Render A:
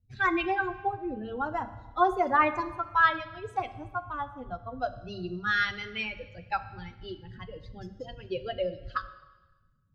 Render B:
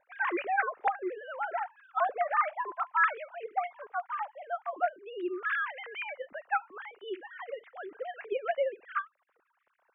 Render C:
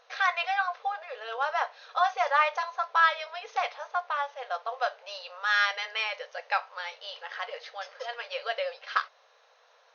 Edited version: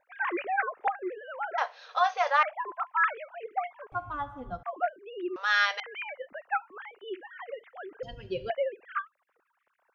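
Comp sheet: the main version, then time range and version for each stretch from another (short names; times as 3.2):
B
1.58–2.43 from C
3.92–4.63 from A
5.36–5.8 from C
8.03–8.5 from A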